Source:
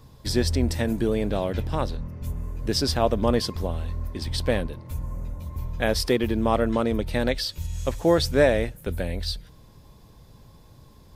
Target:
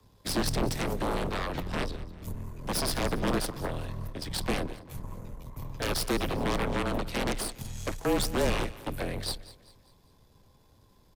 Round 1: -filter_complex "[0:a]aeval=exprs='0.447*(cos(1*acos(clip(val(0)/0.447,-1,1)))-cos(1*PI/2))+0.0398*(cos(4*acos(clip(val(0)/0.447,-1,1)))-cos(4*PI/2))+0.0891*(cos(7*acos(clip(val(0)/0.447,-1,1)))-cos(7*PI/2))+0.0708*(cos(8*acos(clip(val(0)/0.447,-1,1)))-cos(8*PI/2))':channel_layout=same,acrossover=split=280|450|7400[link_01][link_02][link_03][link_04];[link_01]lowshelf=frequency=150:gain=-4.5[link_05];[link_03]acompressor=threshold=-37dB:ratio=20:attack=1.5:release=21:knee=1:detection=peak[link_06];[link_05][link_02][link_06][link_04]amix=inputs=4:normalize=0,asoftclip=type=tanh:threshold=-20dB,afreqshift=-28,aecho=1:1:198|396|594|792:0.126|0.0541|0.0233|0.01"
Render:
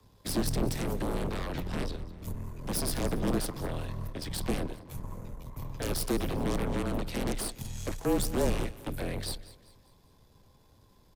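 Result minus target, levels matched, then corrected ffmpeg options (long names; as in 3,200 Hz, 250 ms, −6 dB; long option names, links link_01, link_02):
downward compressor: peak gain reduction +9 dB
-filter_complex "[0:a]aeval=exprs='0.447*(cos(1*acos(clip(val(0)/0.447,-1,1)))-cos(1*PI/2))+0.0398*(cos(4*acos(clip(val(0)/0.447,-1,1)))-cos(4*PI/2))+0.0891*(cos(7*acos(clip(val(0)/0.447,-1,1)))-cos(7*PI/2))+0.0708*(cos(8*acos(clip(val(0)/0.447,-1,1)))-cos(8*PI/2))':channel_layout=same,acrossover=split=280|450|7400[link_01][link_02][link_03][link_04];[link_01]lowshelf=frequency=150:gain=-4.5[link_05];[link_03]acompressor=threshold=-27.5dB:ratio=20:attack=1.5:release=21:knee=1:detection=peak[link_06];[link_05][link_02][link_06][link_04]amix=inputs=4:normalize=0,asoftclip=type=tanh:threshold=-20dB,afreqshift=-28,aecho=1:1:198|396|594|792:0.126|0.0541|0.0233|0.01"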